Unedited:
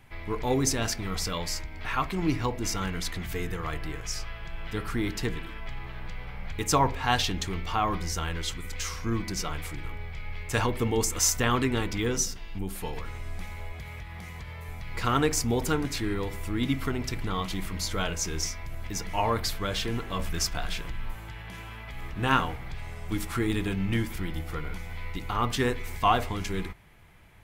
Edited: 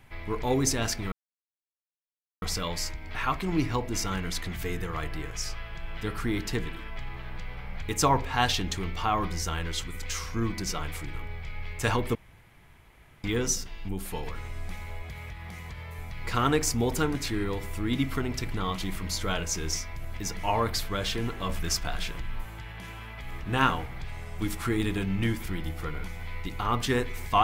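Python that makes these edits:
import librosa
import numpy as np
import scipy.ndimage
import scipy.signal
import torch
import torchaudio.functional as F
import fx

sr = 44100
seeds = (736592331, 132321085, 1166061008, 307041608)

y = fx.edit(x, sr, fx.insert_silence(at_s=1.12, length_s=1.3),
    fx.room_tone_fill(start_s=10.85, length_s=1.09), tone=tone)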